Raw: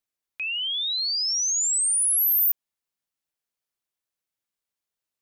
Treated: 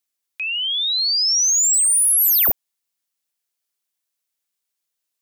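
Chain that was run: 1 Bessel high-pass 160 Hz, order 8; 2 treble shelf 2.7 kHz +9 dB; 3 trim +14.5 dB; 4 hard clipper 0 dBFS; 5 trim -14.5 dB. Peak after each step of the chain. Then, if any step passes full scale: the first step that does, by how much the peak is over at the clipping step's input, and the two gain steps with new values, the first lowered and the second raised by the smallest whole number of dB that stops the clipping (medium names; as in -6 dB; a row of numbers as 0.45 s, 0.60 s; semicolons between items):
-17.0 dBFS, -8.0 dBFS, +6.5 dBFS, 0.0 dBFS, -14.5 dBFS; step 3, 6.5 dB; step 3 +7.5 dB, step 5 -7.5 dB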